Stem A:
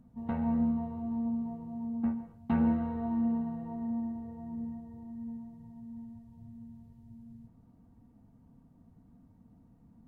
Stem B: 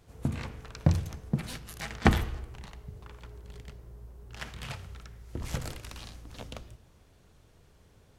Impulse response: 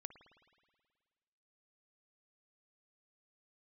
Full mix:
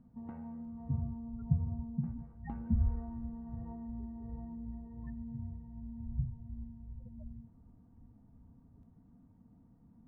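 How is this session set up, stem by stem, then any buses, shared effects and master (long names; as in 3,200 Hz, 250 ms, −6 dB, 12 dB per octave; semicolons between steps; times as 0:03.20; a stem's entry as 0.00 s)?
−2.0 dB, 0.00 s, no send, low-pass filter 1,800 Hz 12 dB per octave; parametric band 620 Hz −2.5 dB; downward compressor 20 to 1, threshold −40 dBFS, peak gain reduction 17.5 dB
+3.0 dB, 0.65 s, no send, amplitude tremolo 2.7 Hz, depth 70%; spectral peaks only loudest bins 4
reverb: not used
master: no processing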